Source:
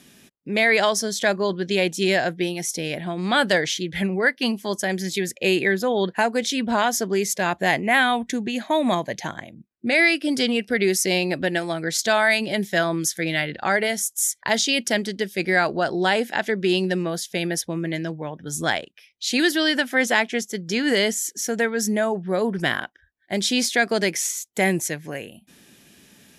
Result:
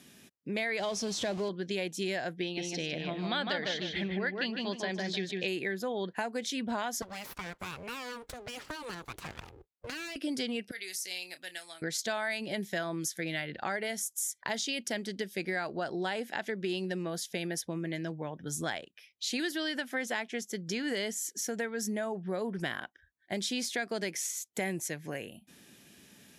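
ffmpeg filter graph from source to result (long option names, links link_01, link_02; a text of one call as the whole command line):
ffmpeg -i in.wav -filter_complex "[0:a]asettb=1/sr,asplit=3[link_01][link_02][link_03];[link_01]atrim=end=0.794[link_04];[link_02]atrim=start=0.79:end=1.49,asetpts=PTS-STARTPTS,afade=type=in:duration=0.004:curve=qsin,afade=type=out:start_time=0.696:duration=0.004:curve=qsin,aeval=exprs='val(0)+0.5*0.0794*sgn(val(0))':channel_layout=same,lowpass=6200,equalizer=frequency=1600:width_type=o:width=1.3:gain=-8.5[link_05];[link_03]atrim=start=1.486[link_06];[link_04][link_05]acrossfade=duration=0.004:curve1=hsin:curve2=qsin[link_07];[link_07][link_06]acrossfade=duration=0.004:curve1=qsin:curve2=hsin,asettb=1/sr,asplit=3[link_08][link_09][link_10];[link_08]atrim=end=2.424[link_11];[link_09]atrim=start=2.42:end=5.48,asetpts=PTS-STARTPTS,afade=type=in:duration=0.004:curve=qsin,afade=type=out:start_time=3.056:duration=0.004:curve=qsin,lowpass=frequency=4000:width_type=q:width=2,asplit=2[link_12][link_13];[link_13]adelay=153,lowpass=frequency=2700:poles=1,volume=-3dB,asplit=2[link_14][link_15];[link_15]adelay=153,lowpass=frequency=2700:poles=1,volume=0.29,asplit=2[link_16][link_17];[link_17]adelay=153,lowpass=frequency=2700:poles=1,volume=0.29,asplit=2[link_18][link_19];[link_19]adelay=153,lowpass=frequency=2700:poles=1,volume=0.29[link_20];[link_12][link_14][link_16][link_18][link_20]amix=inputs=5:normalize=0,atrim=end_sample=134946[link_21];[link_10]atrim=start=5.476[link_22];[link_11][link_21]acrossfade=duration=0.004:curve1=hsin:curve2=qsin[link_23];[link_23][link_22]acrossfade=duration=0.004:curve1=qsin:curve2=hsin,asettb=1/sr,asplit=3[link_24][link_25][link_26];[link_24]atrim=end=7.024[link_27];[link_25]atrim=start=7.02:end=10.16,asetpts=PTS-STARTPTS,afade=type=in:duration=0.004:curve=qsin,afade=type=out:start_time=3.136:duration=0.004:curve=qsin,acrossover=split=750|4400[link_28][link_29][link_30];[link_28]acompressor=threshold=-32dB:ratio=4[link_31];[link_29]acompressor=threshold=-32dB:ratio=4[link_32];[link_30]acompressor=threshold=-43dB:ratio=4[link_33];[link_31][link_32][link_33]amix=inputs=3:normalize=0,aeval=exprs='abs(val(0))':channel_layout=same[link_34];[link_26]atrim=start=10.156[link_35];[link_27][link_34]acrossfade=duration=0.004:curve1=hsin:curve2=qsin[link_36];[link_36][link_35]acrossfade=duration=0.004:curve1=qsin:curve2=hsin,asettb=1/sr,asplit=3[link_37][link_38][link_39];[link_37]atrim=end=10.714[link_40];[link_38]atrim=start=10.71:end=11.82,asetpts=PTS-STARTPTS,afade=type=in:duration=0.004:curve=qsin,afade=type=out:start_time=1.106:duration=0.004:curve=qsin,acrossover=split=4800[link_41][link_42];[link_42]acompressor=threshold=-32dB:ratio=4:attack=1:release=60[link_43];[link_41][link_43]amix=inputs=2:normalize=0,aderivative,asplit=2[link_44][link_45];[link_45]adelay=28,volume=-12dB[link_46];[link_44][link_46]amix=inputs=2:normalize=0,atrim=end_sample=48951[link_47];[link_39]atrim=start=11.816[link_48];[link_40][link_47]acrossfade=duration=0.004:curve1=hsin:curve2=qsin[link_49];[link_49][link_48]acrossfade=duration=0.004:curve1=qsin:curve2=hsin,acompressor=threshold=-28dB:ratio=3,highpass=46,volume=-5dB" out.wav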